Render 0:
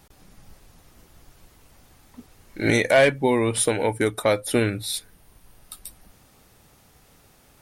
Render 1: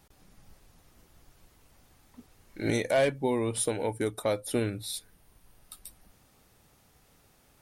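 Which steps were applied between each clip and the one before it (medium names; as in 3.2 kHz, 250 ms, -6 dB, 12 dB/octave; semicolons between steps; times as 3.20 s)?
dynamic bell 1.9 kHz, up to -6 dB, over -39 dBFS, Q 1; trim -7 dB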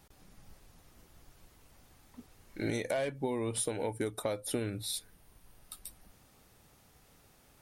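compression 6:1, threshold -30 dBFS, peak gain reduction 10 dB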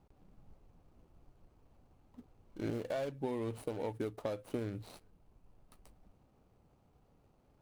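median filter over 25 samples; trim -3 dB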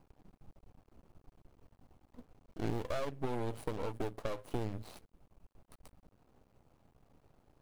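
half-wave rectifier; trim +5 dB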